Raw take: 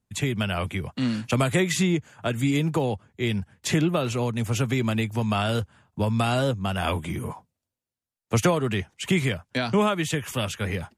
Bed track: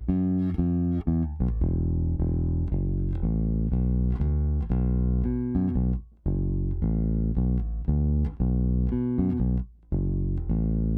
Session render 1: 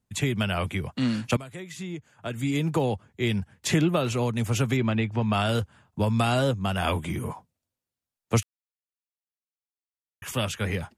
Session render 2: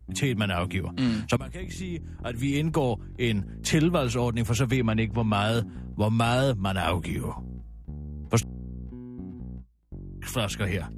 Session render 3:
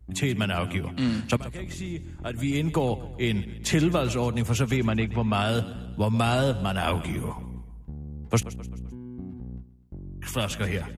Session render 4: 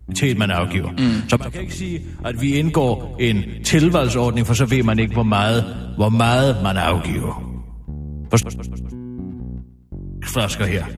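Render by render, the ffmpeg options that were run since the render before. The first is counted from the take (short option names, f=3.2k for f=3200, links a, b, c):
-filter_complex "[0:a]asplit=3[a][b][c];[a]afade=t=out:st=4.76:d=0.02[d];[b]lowpass=3.2k,afade=t=in:st=4.76:d=0.02,afade=t=out:st=5.32:d=0.02[e];[c]afade=t=in:st=5.32:d=0.02[f];[d][e][f]amix=inputs=3:normalize=0,asplit=4[g][h][i][j];[g]atrim=end=1.37,asetpts=PTS-STARTPTS,afade=t=out:st=1.366:d=0.004:c=hsin:silence=0.11885[k];[h]atrim=start=1.37:end=8.43,asetpts=PTS-STARTPTS,afade=t=in:d=1.44:c=qua:silence=0.11885,afade=t=out:st=7.056:d=0.004:c=hsin[l];[i]atrim=start=8.43:end=10.22,asetpts=PTS-STARTPTS,volume=0[m];[j]atrim=start=10.22,asetpts=PTS-STARTPTS,afade=t=in:d=0.004:c=hsin[n];[k][l][m][n]concat=n=4:v=0:a=1"
-filter_complex "[1:a]volume=-14dB[a];[0:a][a]amix=inputs=2:normalize=0"
-af "aecho=1:1:130|260|390|520:0.15|0.0748|0.0374|0.0187"
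-af "volume=8dB"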